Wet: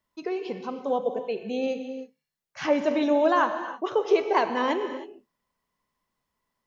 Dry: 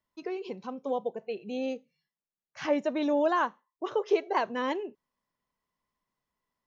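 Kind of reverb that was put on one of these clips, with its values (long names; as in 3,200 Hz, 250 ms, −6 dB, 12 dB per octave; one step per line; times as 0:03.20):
reverb whose tail is shaped and stops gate 340 ms flat, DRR 7.5 dB
level +4.5 dB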